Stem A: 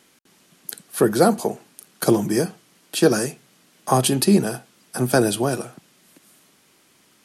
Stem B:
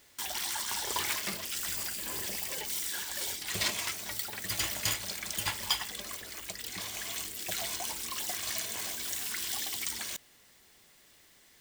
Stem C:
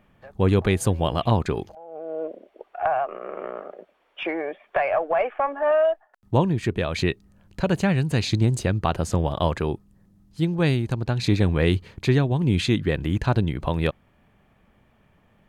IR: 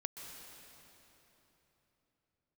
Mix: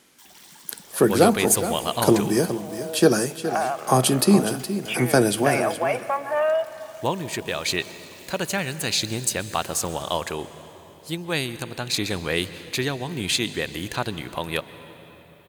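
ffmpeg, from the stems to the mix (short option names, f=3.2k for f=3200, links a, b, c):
-filter_complex "[0:a]volume=-1.5dB,asplit=3[a][b][c];[b]volume=-14.5dB[d];[c]volume=-10dB[e];[1:a]volume=-14dB[f];[2:a]aemphasis=mode=production:type=riaa,adelay=700,volume=-3.5dB,asplit=2[g][h];[h]volume=-5dB[i];[3:a]atrim=start_sample=2205[j];[d][i]amix=inputs=2:normalize=0[k];[k][j]afir=irnorm=-1:irlink=0[l];[e]aecho=0:1:417:1[m];[a][f][g][l][m]amix=inputs=5:normalize=0"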